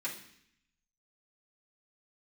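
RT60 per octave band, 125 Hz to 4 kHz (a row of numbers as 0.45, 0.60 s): 1.0, 0.90, 0.65, 0.65, 0.85, 0.80 s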